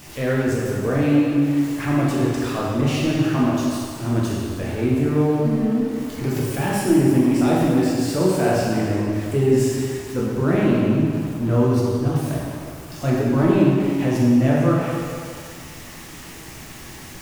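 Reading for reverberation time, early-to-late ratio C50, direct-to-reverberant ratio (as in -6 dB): 2.2 s, -1.5 dB, -5.5 dB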